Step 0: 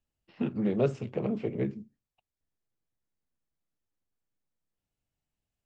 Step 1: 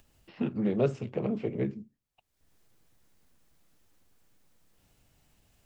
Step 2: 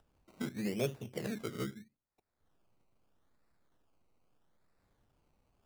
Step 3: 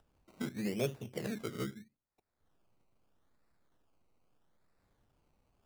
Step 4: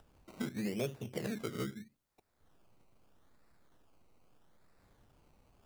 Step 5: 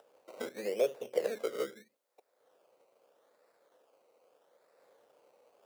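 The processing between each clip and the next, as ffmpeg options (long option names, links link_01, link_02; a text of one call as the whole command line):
ffmpeg -i in.wav -af "acompressor=mode=upward:threshold=-47dB:ratio=2.5" out.wav
ffmpeg -i in.wav -af "acrusher=samples=20:mix=1:aa=0.000001:lfo=1:lforange=12:lforate=0.79,volume=-8dB" out.wav
ffmpeg -i in.wav -af anull out.wav
ffmpeg -i in.wav -af "acompressor=threshold=-48dB:ratio=2,volume=7.5dB" out.wav
ffmpeg -i in.wav -af "highpass=frequency=510:width_type=q:width=4.9" out.wav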